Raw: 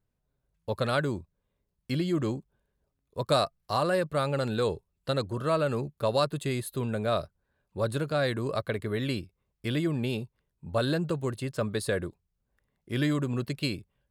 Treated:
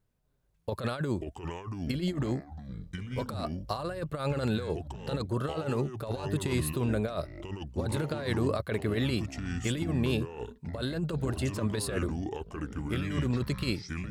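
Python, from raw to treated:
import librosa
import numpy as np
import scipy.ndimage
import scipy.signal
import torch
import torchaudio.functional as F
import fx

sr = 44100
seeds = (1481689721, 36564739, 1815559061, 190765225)

y = fx.over_compress(x, sr, threshold_db=-30.0, ratio=-0.5)
y = fx.echo_pitch(y, sr, ms=252, semitones=-6, count=3, db_per_echo=-6.0)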